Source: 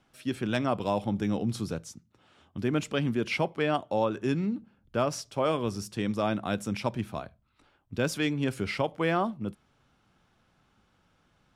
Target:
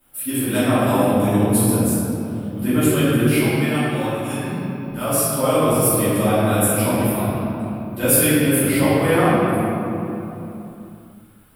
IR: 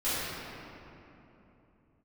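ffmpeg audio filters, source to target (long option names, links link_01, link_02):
-filter_complex "[0:a]asettb=1/sr,asplit=3[link_01][link_02][link_03];[link_01]atrim=end=3.284[link_04];[link_02]atrim=start=3.28:end=5.04,asetpts=PTS-STARTPTS,afade=type=in:duration=0.004:curve=qsin,afade=type=out:start_time=1.756:duration=0.004:curve=qsin,equalizer=frequency=400:width=0.43:gain=-12.5[link_05];[link_03]atrim=start=5.036[link_06];[link_04][link_05]acrossfade=duration=0.004:curve1=hsin:curve2=qsin[link_07];[link_07][link_06]acrossfade=duration=0.004:curve1=qsin:curve2=hsin,acrossover=split=4100[link_08][link_09];[link_09]aexciter=amount=12.2:drive=9.5:freq=9100[link_10];[link_08][link_10]amix=inputs=2:normalize=0[link_11];[1:a]atrim=start_sample=2205[link_12];[link_11][link_12]afir=irnorm=-1:irlink=0"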